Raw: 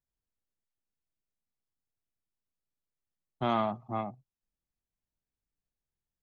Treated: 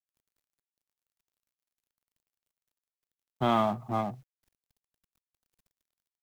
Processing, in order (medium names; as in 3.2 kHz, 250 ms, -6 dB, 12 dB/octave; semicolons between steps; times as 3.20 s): companding laws mixed up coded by mu; trim +2.5 dB